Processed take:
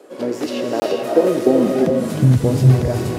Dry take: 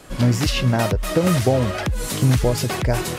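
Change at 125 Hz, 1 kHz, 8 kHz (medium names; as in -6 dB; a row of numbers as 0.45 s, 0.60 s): +2.5 dB, -1.0 dB, -7.0 dB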